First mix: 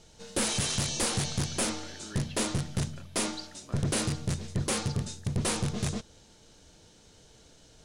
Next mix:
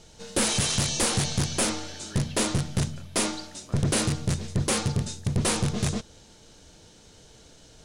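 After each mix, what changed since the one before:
background +4.5 dB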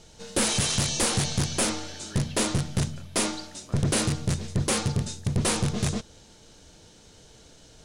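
none

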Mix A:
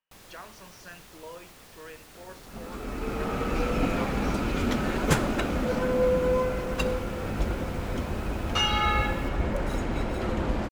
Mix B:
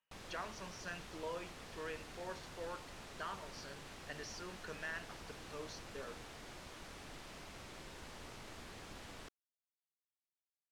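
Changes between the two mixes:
first sound: add air absorption 55 m; second sound: muted

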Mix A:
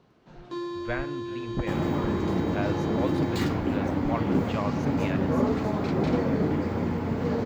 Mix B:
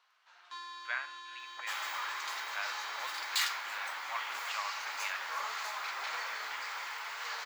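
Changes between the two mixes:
second sound: add high shelf 2400 Hz +10 dB; master: add HPF 1100 Hz 24 dB/oct

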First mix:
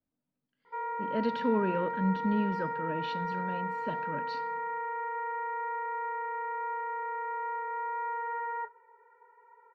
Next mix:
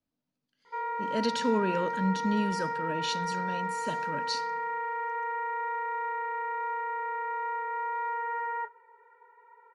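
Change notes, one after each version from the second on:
master: remove air absorption 420 m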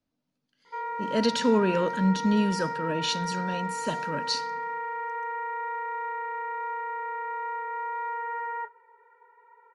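speech +5.0 dB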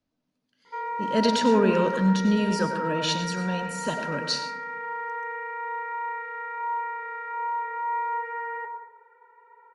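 reverb: on, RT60 0.80 s

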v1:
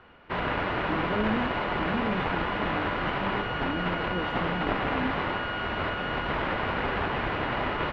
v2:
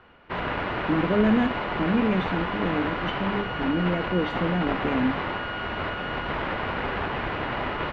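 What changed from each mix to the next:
speech +8.5 dB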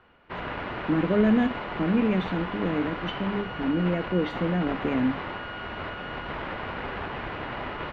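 background -5.0 dB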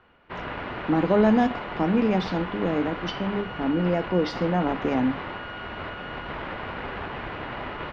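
speech: remove fixed phaser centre 2200 Hz, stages 4

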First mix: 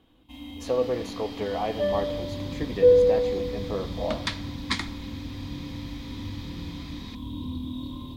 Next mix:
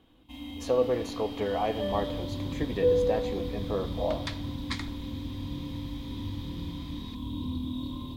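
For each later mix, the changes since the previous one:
second sound -7.5 dB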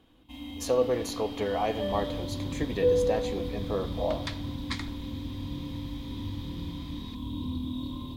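speech: remove LPF 2700 Hz 6 dB/oct

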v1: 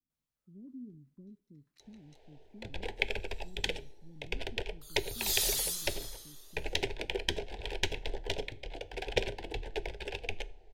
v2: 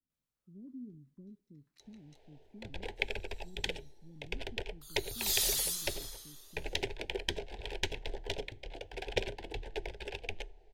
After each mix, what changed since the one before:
first sound: send -11.5 dB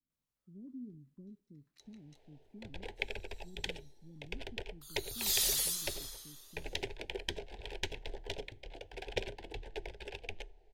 first sound -3.5 dB

